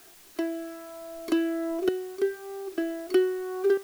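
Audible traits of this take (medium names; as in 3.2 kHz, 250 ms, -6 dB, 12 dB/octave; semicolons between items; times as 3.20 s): tremolo saw up 0.53 Hz, depth 70%; a quantiser's noise floor 10-bit, dither triangular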